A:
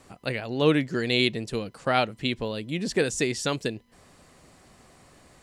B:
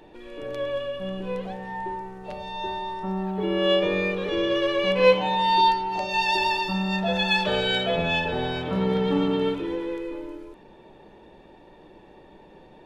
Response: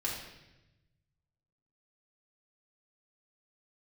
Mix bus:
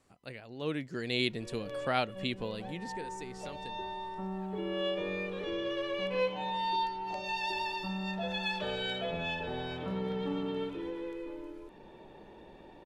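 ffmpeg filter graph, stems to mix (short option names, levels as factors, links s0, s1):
-filter_complex "[0:a]volume=0.447,afade=t=in:st=0.61:d=0.69:silence=0.375837,afade=t=out:st=2.47:d=0.54:silence=0.223872,asplit=2[s0][s1];[1:a]acompressor=threshold=0.00447:ratio=1.5,adelay=1150,volume=0.794[s2];[s1]apad=whole_len=617407[s3];[s2][s3]sidechaincompress=threshold=0.0112:ratio=8:attack=9.6:release=195[s4];[s0][s4]amix=inputs=2:normalize=0"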